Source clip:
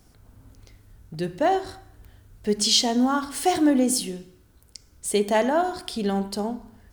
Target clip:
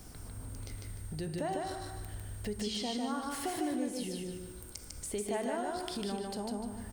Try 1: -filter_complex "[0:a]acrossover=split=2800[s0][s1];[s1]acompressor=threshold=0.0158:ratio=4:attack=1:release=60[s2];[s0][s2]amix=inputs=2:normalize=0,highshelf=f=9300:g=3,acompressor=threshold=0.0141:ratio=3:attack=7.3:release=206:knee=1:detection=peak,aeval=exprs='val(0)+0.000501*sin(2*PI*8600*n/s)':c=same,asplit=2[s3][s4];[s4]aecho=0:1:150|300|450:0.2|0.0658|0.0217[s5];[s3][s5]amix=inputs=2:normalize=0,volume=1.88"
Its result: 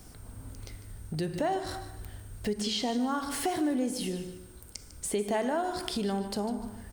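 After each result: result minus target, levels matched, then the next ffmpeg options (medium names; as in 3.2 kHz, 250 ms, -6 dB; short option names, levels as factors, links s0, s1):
echo-to-direct -11.5 dB; compression: peak gain reduction -7 dB
-filter_complex "[0:a]acrossover=split=2800[s0][s1];[s1]acompressor=threshold=0.0158:ratio=4:attack=1:release=60[s2];[s0][s2]amix=inputs=2:normalize=0,highshelf=f=9300:g=3,acompressor=threshold=0.0141:ratio=3:attack=7.3:release=206:knee=1:detection=peak,aeval=exprs='val(0)+0.000501*sin(2*PI*8600*n/s)':c=same,asplit=2[s3][s4];[s4]aecho=0:1:150|300|450|600:0.75|0.247|0.0817|0.0269[s5];[s3][s5]amix=inputs=2:normalize=0,volume=1.88"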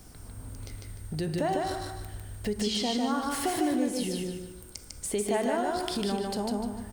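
compression: peak gain reduction -7 dB
-filter_complex "[0:a]acrossover=split=2800[s0][s1];[s1]acompressor=threshold=0.0158:ratio=4:attack=1:release=60[s2];[s0][s2]amix=inputs=2:normalize=0,highshelf=f=9300:g=3,acompressor=threshold=0.00422:ratio=3:attack=7.3:release=206:knee=1:detection=peak,aeval=exprs='val(0)+0.000501*sin(2*PI*8600*n/s)':c=same,asplit=2[s3][s4];[s4]aecho=0:1:150|300|450|600:0.75|0.247|0.0817|0.0269[s5];[s3][s5]amix=inputs=2:normalize=0,volume=1.88"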